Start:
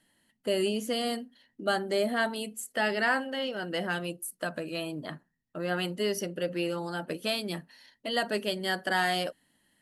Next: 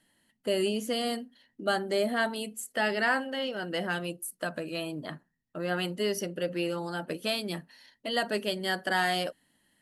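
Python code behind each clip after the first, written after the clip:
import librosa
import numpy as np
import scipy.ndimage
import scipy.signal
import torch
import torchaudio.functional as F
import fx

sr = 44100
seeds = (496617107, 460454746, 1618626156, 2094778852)

y = x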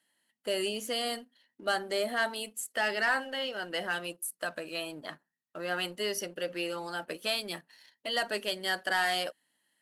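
y = fx.highpass(x, sr, hz=690.0, slope=6)
y = fx.leveller(y, sr, passes=1)
y = F.gain(torch.from_numpy(y), -2.5).numpy()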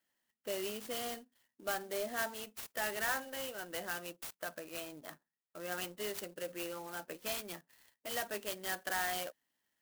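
y = fx.clock_jitter(x, sr, seeds[0], jitter_ms=0.055)
y = F.gain(torch.from_numpy(y), -7.0).numpy()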